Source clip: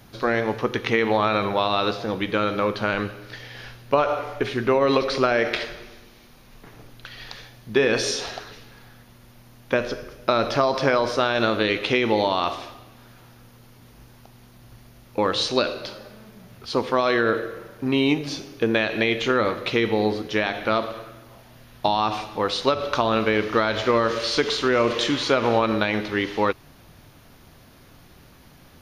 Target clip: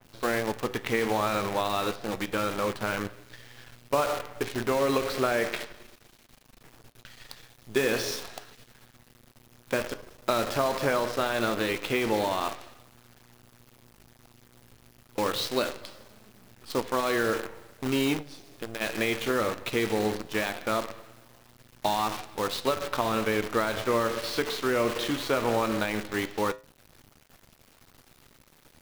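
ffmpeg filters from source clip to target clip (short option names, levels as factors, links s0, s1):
-filter_complex "[0:a]asplit=3[s0][s1][s2];[s0]afade=t=out:st=18.21:d=0.02[s3];[s1]acompressor=threshold=0.0158:ratio=2,afade=t=in:st=18.21:d=0.02,afade=t=out:st=18.8:d=0.02[s4];[s2]afade=t=in:st=18.8:d=0.02[s5];[s3][s4][s5]amix=inputs=3:normalize=0,acrusher=bits=5:dc=4:mix=0:aa=0.000001,flanger=delay=8:depth=1.3:regen=-82:speed=0.78:shape=triangular,adynamicequalizer=threshold=0.0112:dfrequency=2700:dqfactor=0.7:tfrequency=2700:tqfactor=0.7:attack=5:release=100:ratio=0.375:range=2:mode=cutabove:tftype=highshelf,volume=0.841"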